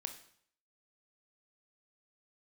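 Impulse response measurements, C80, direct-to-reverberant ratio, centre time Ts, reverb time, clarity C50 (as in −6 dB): 13.5 dB, 6.0 dB, 12 ms, 0.60 s, 10.5 dB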